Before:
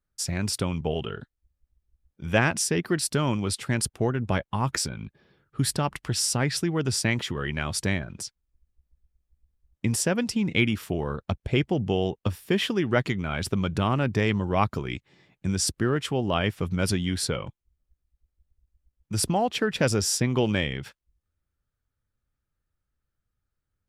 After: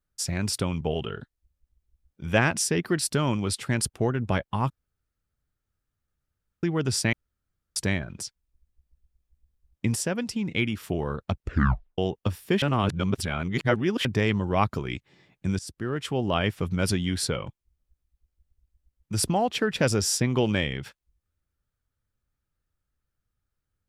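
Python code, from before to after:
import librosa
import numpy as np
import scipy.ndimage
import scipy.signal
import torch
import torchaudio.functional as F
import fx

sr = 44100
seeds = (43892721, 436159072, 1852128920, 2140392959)

y = fx.edit(x, sr, fx.room_tone_fill(start_s=4.7, length_s=1.93),
    fx.room_tone_fill(start_s=7.13, length_s=0.63),
    fx.clip_gain(start_s=9.95, length_s=0.89, db=-3.5),
    fx.tape_stop(start_s=11.35, length_s=0.63),
    fx.reverse_span(start_s=12.62, length_s=1.43),
    fx.fade_in_from(start_s=15.59, length_s=0.63, floor_db=-19.5), tone=tone)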